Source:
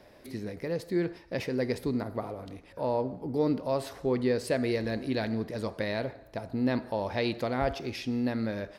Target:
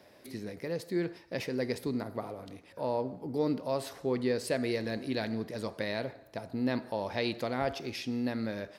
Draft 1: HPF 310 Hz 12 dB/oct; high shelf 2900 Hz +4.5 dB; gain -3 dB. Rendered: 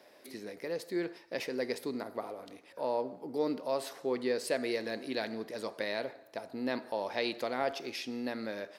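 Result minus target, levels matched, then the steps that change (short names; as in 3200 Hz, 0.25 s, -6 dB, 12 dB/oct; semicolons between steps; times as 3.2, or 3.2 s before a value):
125 Hz band -11.5 dB
change: HPF 98 Hz 12 dB/oct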